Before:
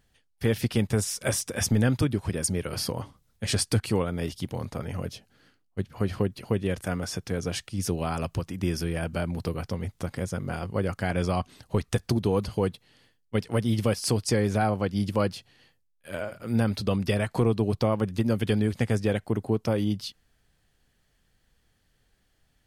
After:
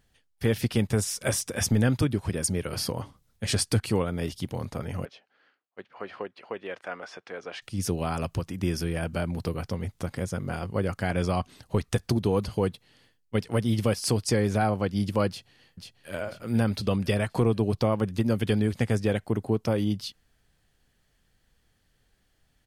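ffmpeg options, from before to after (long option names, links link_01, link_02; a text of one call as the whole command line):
ffmpeg -i in.wav -filter_complex "[0:a]asettb=1/sr,asplit=3[link_01][link_02][link_03];[link_01]atrim=end=5.054[link_04];[link_02]atrim=start=5.05:end=7.62,asetpts=PTS-STARTPTS,afade=type=in:duration=0.004:curve=qsin,afade=type=out:start_time=2.566:duration=0.004:curve=qsin,highpass=600,lowpass=2600[link_05];[link_03]atrim=start=7.616[link_06];[link_04][link_05]acrossfade=duration=0.004:curve1=hsin:curve2=qsin[link_07];[link_07][link_06]acrossfade=duration=0.004:curve1=qsin:curve2=hsin,asplit=2[link_08][link_09];[link_09]afade=type=in:start_time=15.28:duration=0.01,afade=type=out:start_time=16.12:duration=0.01,aecho=0:1:490|980|1470|1960|2450:0.595662|0.238265|0.0953059|0.0381224|0.015249[link_10];[link_08][link_10]amix=inputs=2:normalize=0" out.wav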